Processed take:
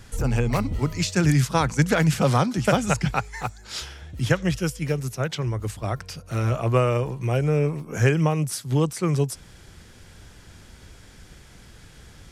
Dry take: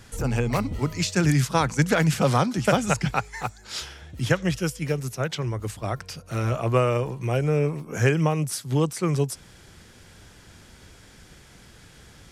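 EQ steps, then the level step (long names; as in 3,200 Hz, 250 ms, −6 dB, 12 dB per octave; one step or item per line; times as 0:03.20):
low-shelf EQ 74 Hz +8 dB
0.0 dB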